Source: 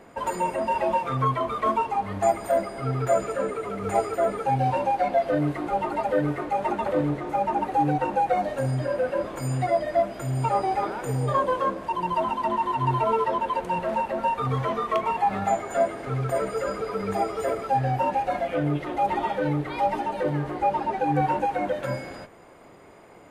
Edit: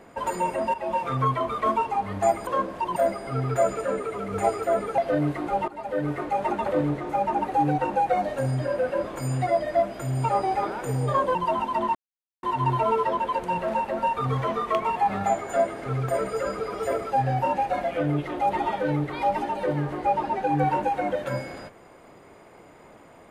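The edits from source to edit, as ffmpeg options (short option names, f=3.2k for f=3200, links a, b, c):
-filter_complex "[0:a]asplit=9[a][b][c][d][e][f][g][h][i];[a]atrim=end=0.74,asetpts=PTS-STARTPTS,afade=t=out:st=0.736:d=0.004:c=hsin:silence=0.237137[j];[b]atrim=start=0.74:end=2.472,asetpts=PTS-STARTPTS,afade=t=in:d=0.3:silence=0.237137[k];[c]atrim=start=11.548:end=12.042[l];[d]atrim=start=2.468:end=4.492[m];[e]atrim=start=5.178:end=5.88,asetpts=PTS-STARTPTS,afade=t=out:st=0.698:d=0.004:c=hsin:silence=0.158489[n];[f]atrim=start=5.88:end=11.552,asetpts=PTS-STARTPTS,afade=t=in:d=0.52:silence=0.158489[o];[g]atrim=start=12.038:end=12.64,asetpts=PTS-STARTPTS,afade=t=out:st=0.598:d=0.004:c=hsin,apad=pad_dur=0.48[p];[h]atrim=start=12.64:end=16.952,asetpts=PTS-STARTPTS,afade=t=in:d=0.004:c=hsin[q];[i]atrim=start=17.308[r];[j][k]concat=n=2:v=0:a=1[s];[s][l]acrossfade=d=0.004:c1=hsin:c2=hsin[t];[t][m]acrossfade=d=0.004:c1=hsin:c2=hsin[u];[n][o]concat=n=2:v=0:a=1[v];[u][v]acrossfade=d=0.004:c1=hsin:c2=hsin[w];[p][q]concat=n=2:v=0:a=1[x];[w][x]acrossfade=d=0.004:c1=hsin:c2=hsin[y];[y][r]acrossfade=d=0.004:c1=hsin:c2=hsin"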